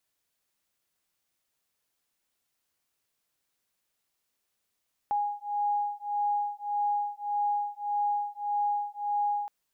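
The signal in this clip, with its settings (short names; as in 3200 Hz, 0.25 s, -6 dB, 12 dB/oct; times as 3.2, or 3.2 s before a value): beating tones 823 Hz, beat 1.7 Hz, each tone -30 dBFS 4.37 s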